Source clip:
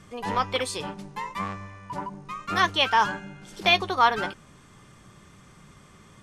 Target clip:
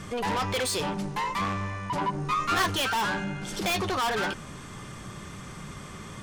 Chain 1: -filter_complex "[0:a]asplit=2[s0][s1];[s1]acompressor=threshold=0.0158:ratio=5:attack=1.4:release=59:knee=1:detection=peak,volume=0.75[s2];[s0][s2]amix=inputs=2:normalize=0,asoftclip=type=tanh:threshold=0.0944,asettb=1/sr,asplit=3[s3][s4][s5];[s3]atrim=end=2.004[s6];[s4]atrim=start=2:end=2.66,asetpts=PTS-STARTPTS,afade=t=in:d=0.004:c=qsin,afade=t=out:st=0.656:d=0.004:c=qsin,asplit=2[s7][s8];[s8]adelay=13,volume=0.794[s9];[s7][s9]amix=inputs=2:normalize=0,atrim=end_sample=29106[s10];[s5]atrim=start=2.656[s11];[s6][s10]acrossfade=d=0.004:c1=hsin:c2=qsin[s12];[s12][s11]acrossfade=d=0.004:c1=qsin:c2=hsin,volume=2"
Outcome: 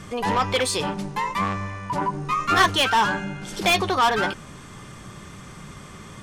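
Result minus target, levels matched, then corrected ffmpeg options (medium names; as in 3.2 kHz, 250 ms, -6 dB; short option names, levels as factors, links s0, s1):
saturation: distortion -6 dB
-filter_complex "[0:a]asplit=2[s0][s1];[s1]acompressor=threshold=0.0158:ratio=5:attack=1.4:release=59:knee=1:detection=peak,volume=0.75[s2];[s0][s2]amix=inputs=2:normalize=0,asoftclip=type=tanh:threshold=0.0282,asettb=1/sr,asplit=3[s3][s4][s5];[s3]atrim=end=2.004[s6];[s4]atrim=start=2:end=2.66,asetpts=PTS-STARTPTS,afade=t=in:d=0.004:c=qsin,afade=t=out:st=0.656:d=0.004:c=qsin,asplit=2[s7][s8];[s8]adelay=13,volume=0.794[s9];[s7][s9]amix=inputs=2:normalize=0,atrim=end_sample=29106[s10];[s5]atrim=start=2.656[s11];[s6][s10]acrossfade=d=0.004:c1=hsin:c2=qsin[s12];[s12][s11]acrossfade=d=0.004:c1=qsin:c2=hsin,volume=2"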